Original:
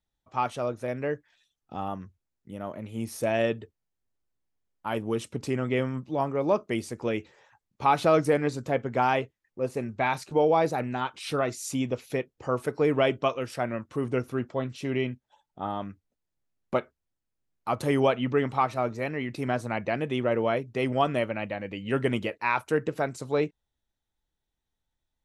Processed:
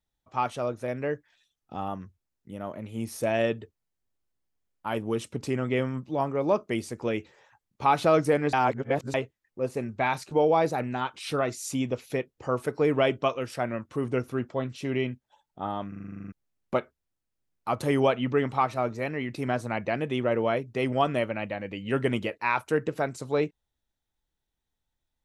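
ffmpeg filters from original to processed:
-filter_complex "[0:a]asplit=14[a][b][c][d][e][f][g][h][i][j][k][l][m][n];[a]atrim=end=8.532[o];[b]atrim=start=8.528:end=9.142,asetpts=PTS-STARTPTS,areverse[p];[c]atrim=start=9.138:end=15.922[q];[d]atrim=start=15.878:end=15.922[r];[e]atrim=start=15.878:end=15.922[s];[f]atrim=start=15.878:end=15.922[t];[g]atrim=start=15.878:end=15.922[u];[h]atrim=start=15.878:end=15.922[v];[i]atrim=start=15.878:end=15.922[w];[j]atrim=start=15.878:end=15.922[x];[k]atrim=start=15.878:end=15.922[y];[l]atrim=start=15.878:end=15.922[z];[m]atrim=start=15.878:end=15.922[aa];[n]atrim=start=16.318[ab];[o][p]acrossfade=d=0.004:c1=hsin:c2=hsin[ac];[ac][q]acrossfade=d=0.004:c1=hsin:c2=hsin[ad];[ad][r]acrossfade=d=0.004:c1=hsin:c2=hsin[ae];[ae][s]acrossfade=d=0.004:c1=hsin:c2=hsin[af];[af][t]acrossfade=d=0.004:c1=hsin:c2=hsin[ag];[ag][u]acrossfade=d=0.004:c1=hsin:c2=hsin[ah];[ah][v]acrossfade=d=0.004:c1=hsin:c2=hsin[ai];[ai][w]acrossfade=d=0.004:c1=hsin:c2=hsin[aj];[aj][x]acrossfade=d=0.004:c1=hsin:c2=hsin[ak];[ak][y]acrossfade=d=0.004:c1=hsin:c2=hsin[al];[al][z]acrossfade=d=0.004:c1=hsin:c2=hsin[am];[am][aa]acrossfade=d=0.004:c1=hsin:c2=hsin[an];[an][ab]acrossfade=d=0.004:c1=hsin:c2=hsin"

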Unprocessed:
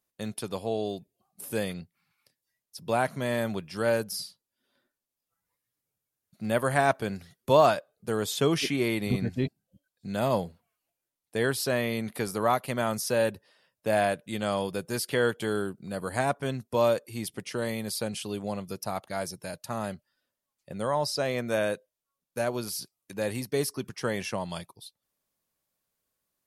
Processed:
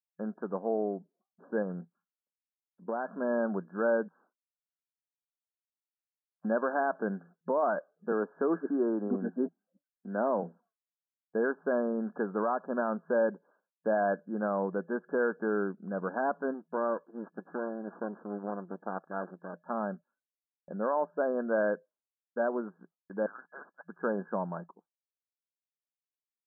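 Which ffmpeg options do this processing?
-filter_complex "[0:a]asettb=1/sr,asplit=3[a][b][c];[a]atrim=end=1.624[d];[b]atrim=start=1.62:end=3.21,asetpts=PTS-STARTPTS,afade=t=in:d=0.004:c=qsin,afade=t=out:st=1.586:d=0.004:c=qsin,acompressor=threshold=-28dB:ratio=6:attack=3.2:release=140:knee=1:detection=peak[e];[c]atrim=start=3.206[f];[d][e]acrossfade=d=0.004:c1=hsin:c2=qsin[g];[g][f]acrossfade=d=0.004:c1=qsin:c2=hsin,asettb=1/sr,asplit=3[h][i][j];[h]atrim=end=4.084[k];[i]atrim=start=4.08:end=6.45,asetpts=PTS-STARTPTS,afade=t=in:d=0.004:c=qsin,afade=t=out:st=2.366:d=0.004:c=qsin,lowpass=f=2.7k:t=q:w=0.5098,lowpass=f=2.7k:t=q:w=0.6013,lowpass=f=2.7k:t=q:w=0.9,lowpass=f=2.7k:t=q:w=2.563,afreqshift=-3200[l];[j]atrim=start=6.446[m];[k][l]acrossfade=d=0.004:c1=hsin:c2=qsin[n];[n][m]acrossfade=d=0.004:c1=qsin:c2=hsin,asettb=1/sr,asplit=3[o][p][q];[o]atrim=end=8.124[r];[p]atrim=start=8.12:end=10.43,asetpts=PTS-STARTPTS,afade=t=in:d=0.004:c=qsin,afade=t=out:st=2.306:d=0.004:c=qsin,highpass=f=210:w=0.5412,highpass=f=210:w=1.3066[s];[q]atrim=start=10.426[t];[r][s]acrossfade=d=0.004:c1=hsin:c2=qsin[u];[u][t]acrossfade=d=0.004:c1=qsin:c2=hsin,asplit=3[v][w][x];[v]afade=t=out:st=16.53:d=0.02[y];[w]aeval=exprs='max(val(0),0)':c=same,afade=t=in:st=16.53:d=0.02,afade=t=out:st=19.53:d=0.02[z];[x]afade=t=in:st=19.53:d=0.02[aa];[y][z][aa]amix=inputs=3:normalize=0,asettb=1/sr,asplit=3[ab][ac][ad];[ab]atrim=end=23.264[ae];[ac]atrim=start=23.26:end=23.89,asetpts=PTS-STARTPTS,afade=t=in:d=0.004:c=qsin,afade=t=out:st=0.626:d=0.004:c=qsin,lowpass=f=3.4k:t=q:w=0.5098,lowpass=f=3.4k:t=q:w=0.6013,lowpass=f=3.4k:t=q:w=0.9,lowpass=f=3.4k:t=q:w=2.563,afreqshift=-4000[af];[ad]atrim=start=23.886[ag];[ae][af]acrossfade=d=0.004:c1=hsin:c2=qsin[ah];[ah][ag]acrossfade=d=0.004:c1=qsin:c2=hsin,afftfilt=real='re*between(b*sr/4096,170,1700)':imag='im*between(b*sr/4096,170,1700)':win_size=4096:overlap=0.75,agate=range=-33dB:threshold=-57dB:ratio=3:detection=peak,alimiter=limit=-19.5dB:level=0:latency=1:release=47"

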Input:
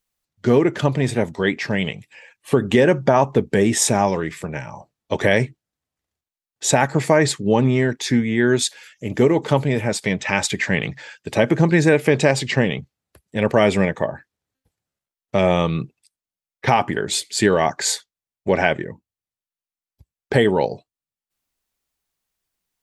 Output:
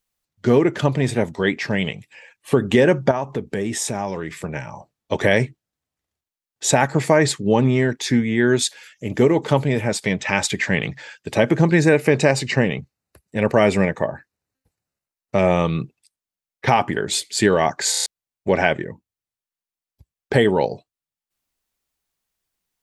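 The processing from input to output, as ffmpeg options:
-filter_complex "[0:a]asettb=1/sr,asplit=3[a][b][c];[a]atrim=end=3.114[d];[b]atrim=start=3.11:end=4.43,asetpts=PTS-STARTPTS,afade=t=in:d=0.004:c=qsin,afade=t=out:st=1.316:d=0.004:c=qsin,acompressor=threshold=-26dB:ratio=2:attack=3.2:release=140:knee=1:detection=peak[e];[c]atrim=start=4.426[f];[d][e]acrossfade=d=0.004:c1=hsin:c2=qsin[g];[g][f]acrossfade=d=0.004:c1=qsin:c2=hsin,asettb=1/sr,asplit=3[h][i][j];[h]atrim=end=11.804[k];[i]atrim=start=11.8:end=15.65,asetpts=PTS-STARTPTS,afade=t=in:d=0.004:c=qsin,afade=t=out:st=3.846:d=0.004:c=qsin,bandreject=f=3.3k:w=6.6[l];[j]atrim=start=15.646[m];[k][l]acrossfade=d=0.004:c1=hsin:c2=qsin[n];[n][m]acrossfade=d=0.004:c1=qsin:c2=hsin,asplit=6[o][p][q][r][s][t];[o]atrim=end=17.942[u];[p]atrim=start=17.908:end=17.942[v];[q]atrim=start=17.908:end=17.942[w];[r]atrim=start=17.908:end=17.942[x];[s]atrim=start=17.908:end=17.942[y];[t]atrim=start=18.058[z];[u][v]acrossfade=d=0.004:c1=hsin:c2=hsin[aa];[aa][w]acrossfade=d=0.004:c1=hsin:c2=hsin[ab];[ab][x]acrossfade=d=0.004:c1=hsin:c2=hsin[ac];[ac][y]acrossfade=d=0.004:c1=hsin:c2=hsin[ad];[ad][z]acrossfade=d=0.004:c1=hsin:c2=hsin"

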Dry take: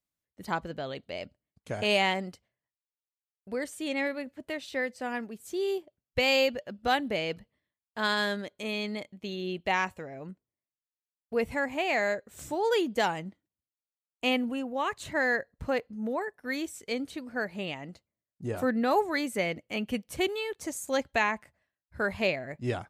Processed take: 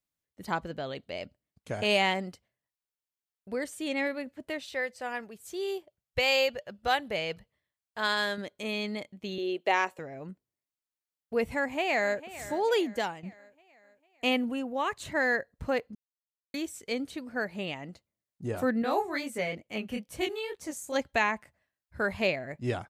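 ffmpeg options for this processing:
-filter_complex "[0:a]asettb=1/sr,asplit=3[a][b][c];[a]atrim=end=4.634[d];[b]atrim=start=4.63:end=8.38,asetpts=PTS-STARTPTS,afade=t=in:d=0.004:c=qsin,afade=t=out:st=3.746:d=0.004:c=qsin,equalizer=f=260:w=1.7:g=-10[e];[c]atrim=start=8.376[f];[d][e]acrossfade=d=0.004:c1=hsin:c2=qsin[g];[g][f]acrossfade=d=0.004:c1=qsin:c2=hsin,asettb=1/sr,asplit=3[h][i][j];[h]atrim=end=9.384[k];[i]atrim=start=9.38:end=9.99,asetpts=PTS-STARTPTS,afade=t=in:d=0.004:c=qsin,afade=t=out:st=0.606:d=0.004:c=qsin,highpass=f=410:t=q:w=1.9[l];[j]atrim=start=9.986[m];[k][l]acrossfade=d=0.004:c1=hsin:c2=qsin[n];[n][m]acrossfade=d=0.004:c1=qsin:c2=hsin,asplit=2[o][p];[p]afade=t=in:st=11.58:d=0.01,afade=t=out:st=12.26:d=0.01,aecho=0:1:450|900|1350|1800|2250:0.16788|0.0839402|0.0419701|0.0209851|0.0104925[q];[o][q]amix=inputs=2:normalize=0,asettb=1/sr,asplit=3[r][s][t];[r]atrim=end=18.824[u];[s]atrim=start=18.82:end=20.96,asetpts=PTS-STARTPTS,afade=t=in:d=0.004:c=qsin,afade=t=out:st=2.136:d=0.004:c=qsin,flanger=delay=18:depth=7.4:speed=2.2[v];[t]atrim=start=20.956[w];[u][v]acrossfade=d=0.004:c1=hsin:c2=qsin[x];[x][w]acrossfade=d=0.004:c1=qsin:c2=hsin,asplit=4[y][z][aa][ab];[y]atrim=end=13.23,asetpts=PTS-STARTPTS,afade=t=out:st=12.79:d=0.44:silence=0.237137[ac];[z]atrim=start=13.23:end=15.95,asetpts=PTS-STARTPTS,afade=t=in:d=0.004:c=hsin:silence=0.237137,afade=t=out:st=2.716:d=0.004:c=hsin[ad];[aa]atrim=start=15.95:end=16.54,asetpts=PTS-STARTPTS,volume=0[ae];[ab]atrim=start=16.54,asetpts=PTS-STARTPTS,afade=t=in:d=0.004:c=hsin[af];[ac][ad][ae][af]concat=n=4:v=0:a=1"

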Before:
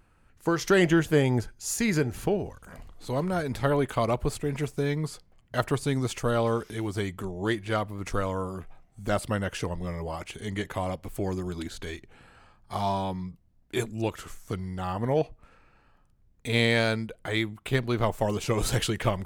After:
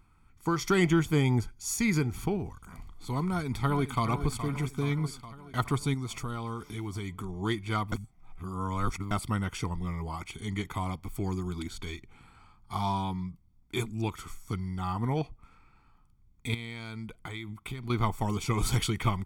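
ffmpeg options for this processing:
-filter_complex "[0:a]asplit=2[a][b];[b]afade=t=in:st=3.27:d=0.01,afade=t=out:st=4.07:d=0.01,aecho=0:1:420|840|1260|1680|2100|2520|2940|3360:0.298538|0.19405|0.126132|0.0819861|0.0532909|0.0346391|0.0225154|0.014635[c];[a][c]amix=inputs=2:normalize=0,asettb=1/sr,asplit=3[d][e][f];[d]atrim=end=5.944[g];[e]atrim=start=5.94:end=7.29,asetpts=PTS-STARTPTS,afade=t=in:d=0.004:c=qsin,afade=t=out:st=1.346:d=0.004:c=qsin,acompressor=threshold=-32dB:ratio=2.5:attack=3.2:release=140:knee=1:detection=peak[h];[f]atrim=start=7.286[i];[g][h]acrossfade=d=0.004:c1=hsin:c2=qsin[j];[j][i]acrossfade=d=0.004:c1=qsin:c2=hsin,asettb=1/sr,asplit=3[k][l][m];[k]atrim=end=16.544[n];[l]atrim=start=16.54:end=17.9,asetpts=PTS-STARTPTS,afade=t=in:d=0.004:c=qsin,afade=t=out:st=1.356:d=0.004:c=qsin,acompressor=threshold=-32dB:ratio=16:attack=3.2:release=140:knee=1:detection=peak[o];[m]atrim=start=17.896[p];[n][o]acrossfade=d=0.004:c1=hsin:c2=qsin[q];[q][p]acrossfade=d=0.004:c1=qsin:c2=hsin,asplit=3[r][s][t];[r]atrim=end=7.922[u];[s]atrim=start=7.918:end=9.112,asetpts=PTS-STARTPTS,areverse[v];[t]atrim=start=9.108[w];[u][v]acrossfade=d=0.004:c1=hsin:c2=hsin[x];[x][w]acrossfade=d=0.004:c1=hsin:c2=hsin,aecho=1:1:0.9:0.78,volume=-4dB"

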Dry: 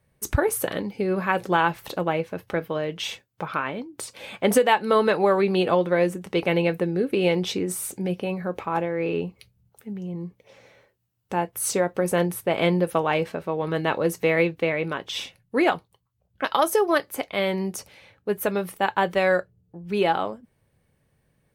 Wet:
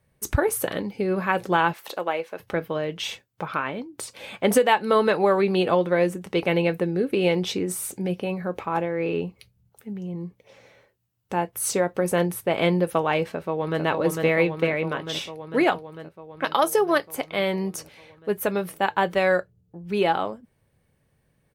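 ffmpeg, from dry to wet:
-filter_complex "[0:a]asettb=1/sr,asplit=3[a][b][c];[a]atrim=end=1.734[d];[b]atrim=start=1.73:end=2.4,asetpts=PTS-STARTPTS,afade=t=in:d=0.004:c=qsin,afade=t=out:st=0.666:d=0.004:c=qsin,highpass=440[e];[c]atrim=start=2.396[f];[d][e]acrossfade=d=0.004:c1=hsin:c2=qsin[g];[g][f]acrossfade=d=0.004:c1=qsin:c2=hsin,asplit=2[h][i];[i]afade=t=in:st=13.29:d=0.01,afade=t=out:st=13.83:d=0.01,aecho=0:1:450|900|1350|1800|2250|2700|3150|3600|4050|4500|4950|5400:0.668344|0.501258|0.375943|0.281958|0.211468|0.158601|0.118951|0.0892131|0.0669099|0.0501824|0.0376368|0.0282276[j];[h][j]amix=inputs=2:normalize=0"

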